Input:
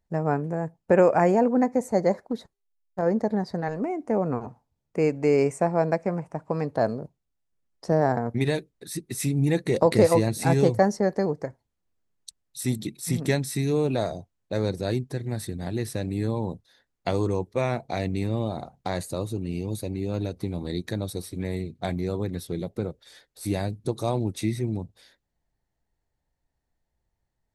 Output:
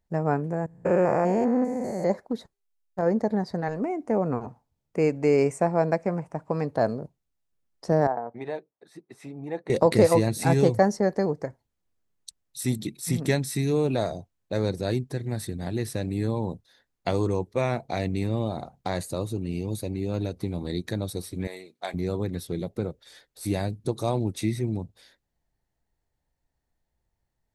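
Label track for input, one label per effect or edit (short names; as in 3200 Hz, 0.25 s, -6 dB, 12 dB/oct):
0.660000	2.100000	stepped spectrum every 0.2 s
8.070000	9.700000	band-pass 780 Hz, Q 1.6
21.470000	21.940000	HPF 620 Hz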